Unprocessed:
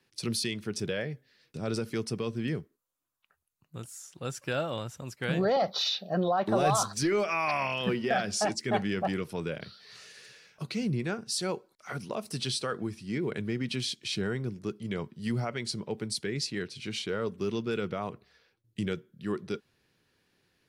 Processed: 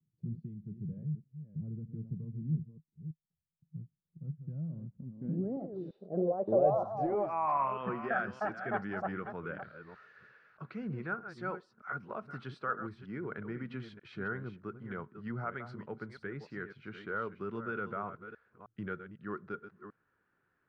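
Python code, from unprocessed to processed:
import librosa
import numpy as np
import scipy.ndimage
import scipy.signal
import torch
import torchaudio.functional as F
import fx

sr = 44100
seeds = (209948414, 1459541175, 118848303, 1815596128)

y = fx.reverse_delay(x, sr, ms=311, wet_db=-10)
y = fx.filter_sweep_lowpass(y, sr, from_hz=160.0, to_hz=1400.0, start_s=4.59, end_s=8.08, q=4.5)
y = F.gain(torch.from_numpy(y), -9.0).numpy()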